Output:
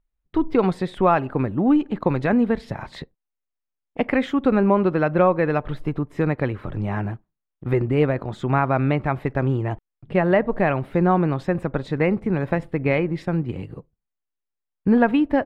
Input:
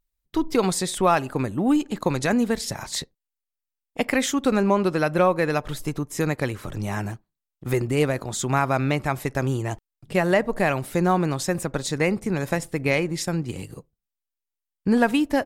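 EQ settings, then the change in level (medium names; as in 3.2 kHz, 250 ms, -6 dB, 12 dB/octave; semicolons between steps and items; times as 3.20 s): distance through air 490 m; +3.5 dB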